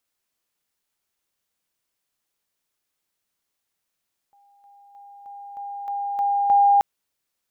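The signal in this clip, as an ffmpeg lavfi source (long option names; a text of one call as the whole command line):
ffmpeg -f lavfi -i "aevalsrc='pow(10,(-54.5+6*floor(t/0.31))/20)*sin(2*PI*806*t)':duration=2.48:sample_rate=44100" out.wav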